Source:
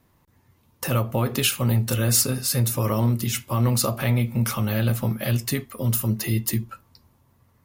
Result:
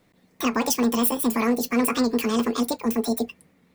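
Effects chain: wide varispeed 2.04×; warped record 78 rpm, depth 100 cents

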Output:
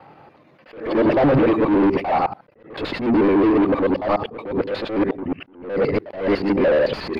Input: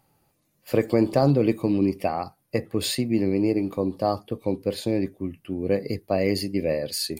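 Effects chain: time reversed locally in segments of 73 ms; overdrive pedal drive 37 dB, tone 1.8 kHz, clips at -6 dBFS; distance through air 350 m; attacks held to a fixed rise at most 110 dB/s; trim -1.5 dB

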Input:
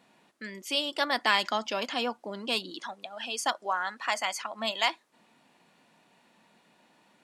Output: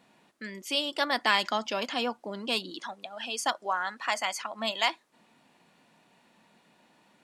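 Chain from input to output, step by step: bass shelf 140 Hz +4.5 dB

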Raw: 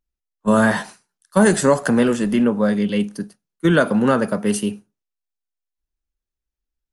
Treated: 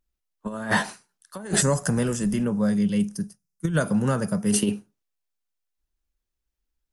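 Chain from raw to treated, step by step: time-frequency box 1.62–4.53 s, 210–4800 Hz -12 dB; compressor with a negative ratio -21 dBFS, ratio -0.5

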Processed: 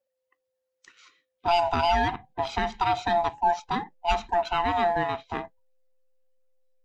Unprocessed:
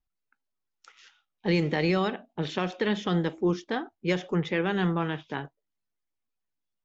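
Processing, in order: split-band scrambler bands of 500 Hz; in parallel at -10 dB: hysteresis with a dead band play -28 dBFS

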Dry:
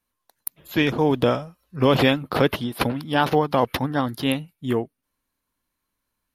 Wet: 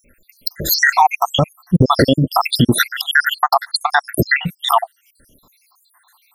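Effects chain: random holes in the spectrogram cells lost 81%; compression 2.5:1, threshold -41 dBFS, peak gain reduction 17 dB; loudness maximiser +32.5 dB; trim -1 dB; Vorbis 192 kbps 44.1 kHz

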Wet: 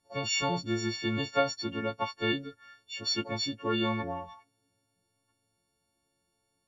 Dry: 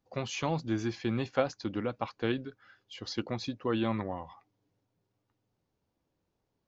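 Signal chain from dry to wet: partials quantised in pitch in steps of 4 st; MP2 96 kbps 44.1 kHz

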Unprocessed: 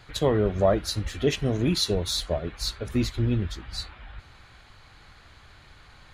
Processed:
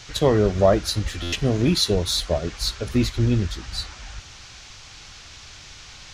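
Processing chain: band noise 2.1–6.6 kHz -50 dBFS; buffer glitch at 1.22 s, samples 512, times 8; trim +4.5 dB

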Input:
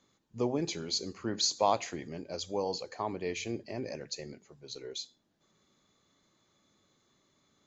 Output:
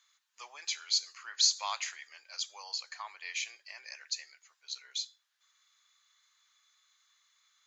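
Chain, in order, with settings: high-pass 1.3 kHz 24 dB/octave; trim +4 dB

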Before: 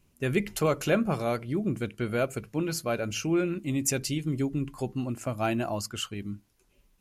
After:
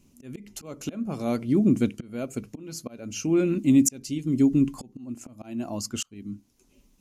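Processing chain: slow attack 677 ms; hard clipper -17.5 dBFS, distortion -44 dB; fifteen-band graphic EQ 250 Hz +12 dB, 1.6 kHz -5 dB, 6.3 kHz +7 dB; trim +2.5 dB

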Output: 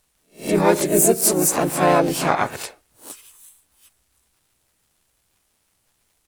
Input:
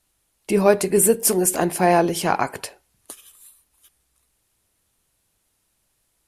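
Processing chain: reverse spectral sustain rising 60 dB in 0.31 s; crackle 140 per s -51 dBFS; harmony voices -3 st -2 dB, +7 st -5 dB; trim -3 dB

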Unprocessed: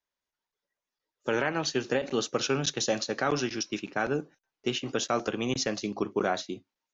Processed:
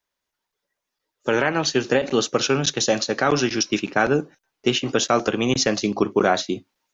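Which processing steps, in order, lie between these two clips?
gain riding within 3 dB 0.5 s; trim +9 dB

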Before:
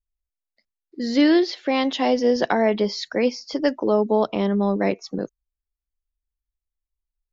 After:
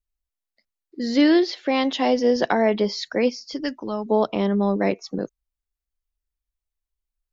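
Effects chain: 3.29–4.06 s: peaking EQ 1.2 kHz -> 360 Hz -12.5 dB 1.8 oct

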